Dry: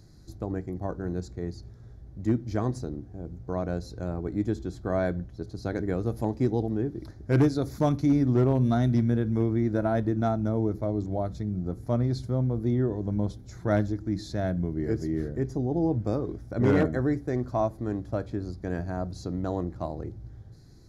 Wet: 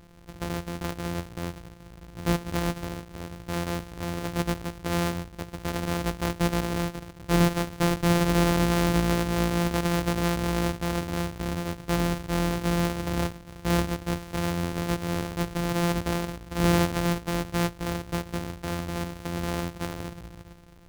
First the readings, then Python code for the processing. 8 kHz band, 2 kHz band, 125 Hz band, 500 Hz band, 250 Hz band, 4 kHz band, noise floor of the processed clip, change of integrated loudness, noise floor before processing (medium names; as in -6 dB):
no reading, +8.5 dB, -1.0 dB, -1.0 dB, -0.5 dB, +15.0 dB, -47 dBFS, +0.5 dB, -47 dBFS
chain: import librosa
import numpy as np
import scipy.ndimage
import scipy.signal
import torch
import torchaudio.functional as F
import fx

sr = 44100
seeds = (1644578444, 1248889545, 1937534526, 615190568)

y = np.r_[np.sort(x[:len(x) // 256 * 256].reshape(-1, 256), axis=1).ravel(), x[len(x) // 256 * 256:]]